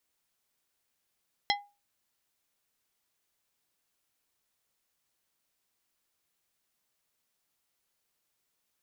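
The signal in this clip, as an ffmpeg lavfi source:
-f lavfi -i "aevalsrc='0.0631*pow(10,-3*t/0.29)*sin(2*PI*815*t)+0.0596*pow(10,-3*t/0.153)*sin(2*PI*2037.5*t)+0.0562*pow(10,-3*t/0.11)*sin(2*PI*3260*t)+0.0531*pow(10,-3*t/0.094)*sin(2*PI*4075*t)+0.0501*pow(10,-3*t/0.078)*sin(2*PI*5297.5*t)':d=0.89:s=44100"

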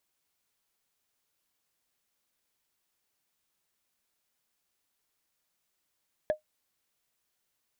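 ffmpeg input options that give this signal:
-f lavfi -i "aevalsrc='0.112*pow(10,-3*t/0.12)*sin(2*PI*614*t)+0.0282*pow(10,-3*t/0.036)*sin(2*PI*1692.8*t)+0.00708*pow(10,-3*t/0.016)*sin(2*PI*3318.1*t)+0.00178*pow(10,-3*t/0.009)*sin(2*PI*5484.9*t)+0.000447*pow(10,-3*t/0.005)*sin(2*PI*8190.8*t)':d=0.45:s=44100"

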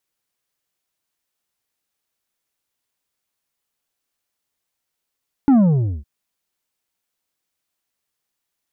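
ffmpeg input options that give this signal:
-f lavfi -i "aevalsrc='0.316*clip((0.56-t)/0.5,0,1)*tanh(2.11*sin(2*PI*290*0.56/log(65/290)*(exp(log(65/290)*t/0.56)-1)))/tanh(2.11)':d=0.56:s=44100"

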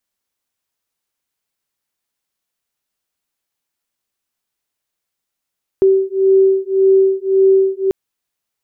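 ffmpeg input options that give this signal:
-f lavfi -i "aevalsrc='0.237*(sin(2*PI*384*t)+sin(2*PI*385.8*t))':d=2.09:s=44100"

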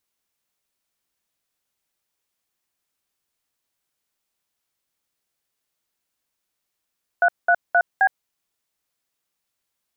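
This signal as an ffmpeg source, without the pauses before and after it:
-f lavfi -i "aevalsrc='0.168*clip(min(mod(t,0.263),0.064-mod(t,0.263))/0.002,0,1)*(eq(floor(t/0.263),0)*(sin(2*PI*697*mod(t,0.263))+sin(2*PI*1477*mod(t,0.263)))+eq(floor(t/0.263),1)*(sin(2*PI*697*mod(t,0.263))+sin(2*PI*1477*mod(t,0.263)))+eq(floor(t/0.263),2)*(sin(2*PI*697*mod(t,0.263))+sin(2*PI*1477*mod(t,0.263)))+eq(floor(t/0.263),3)*(sin(2*PI*770*mod(t,0.263))+sin(2*PI*1633*mod(t,0.263))))':d=1.052:s=44100"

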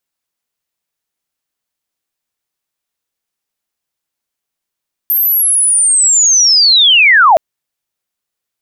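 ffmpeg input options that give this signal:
-f lavfi -i "aevalsrc='pow(10,(-9+6*t/2.27)/20)*sin(2*PI*(13000*t-12410*t*t/(2*2.27)))':d=2.27:s=44100"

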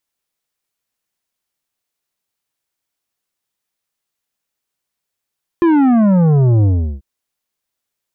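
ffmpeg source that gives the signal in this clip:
-f lavfi -i "aevalsrc='0.335*clip((1.39-t)/0.37,0,1)*tanh(3.16*sin(2*PI*350*1.39/log(65/350)*(exp(log(65/350)*t/1.39)-1)))/tanh(3.16)':d=1.39:s=44100"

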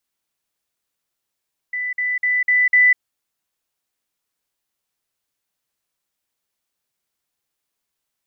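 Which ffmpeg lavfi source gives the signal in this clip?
-f lavfi -i "aevalsrc='pow(10,(-21.5+3*floor(t/0.25))/20)*sin(2*PI*1990*t)*clip(min(mod(t,0.25),0.2-mod(t,0.25))/0.005,0,1)':d=1.25:s=44100"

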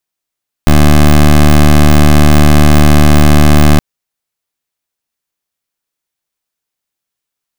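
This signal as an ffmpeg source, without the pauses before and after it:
-f lavfi -i "aevalsrc='0.631*(2*lt(mod(74.8*t,1),0.16)-1)':d=3.12:s=44100"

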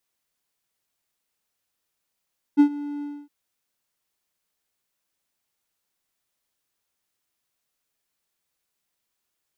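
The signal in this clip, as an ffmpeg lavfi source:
-f lavfi -i "aevalsrc='0.422*(1-4*abs(mod(290*t+0.25,1)-0.5))':d=0.713:s=44100,afade=t=in:d=0.03,afade=t=out:st=0.03:d=0.085:silence=0.112,afade=t=out:st=0.45:d=0.263"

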